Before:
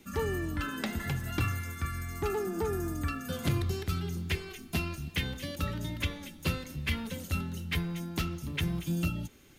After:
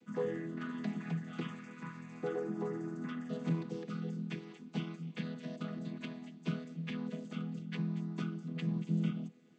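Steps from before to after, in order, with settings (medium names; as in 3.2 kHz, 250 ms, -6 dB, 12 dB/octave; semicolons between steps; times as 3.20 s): vocoder on a held chord major triad, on E3; trim -3 dB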